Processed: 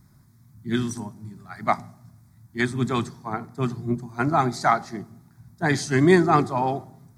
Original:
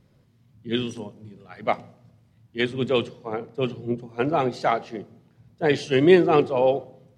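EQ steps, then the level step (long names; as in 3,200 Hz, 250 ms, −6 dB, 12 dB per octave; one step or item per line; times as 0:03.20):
high-shelf EQ 6,000 Hz +11.5 dB
phaser with its sweep stopped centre 1,200 Hz, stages 4
+6.0 dB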